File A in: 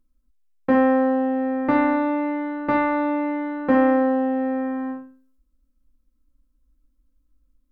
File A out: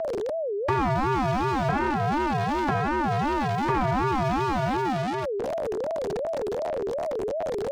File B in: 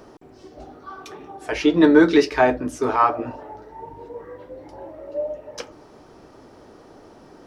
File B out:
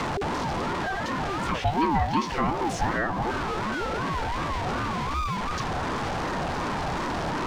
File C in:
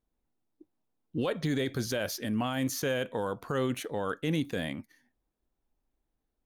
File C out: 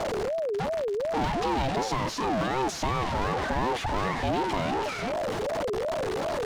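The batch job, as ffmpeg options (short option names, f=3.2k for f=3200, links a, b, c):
-filter_complex "[0:a]aeval=exprs='val(0)+0.5*0.112*sgn(val(0))':c=same,lowpass=5.2k,acrusher=bits=7:mix=0:aa=0.5,equalizer=f=1.2k:t=o:w=0.3:g=3,acrossover=split=380|940[a][b][c];[a]acompressor=threshold=-23dB:ratio=4[d];[b]acompressor=threshold=-28dB:ratio=4[e];[c]acompressor=threshold=-32dB:ratio=4[f];[d][e][f]amix=inputs=3:normalize=0,aeval=exprs='val(0)*sin(2*PI*530*n/s+530*0.25/2.7*sin(2*PI*2.7*n/s))':c=same"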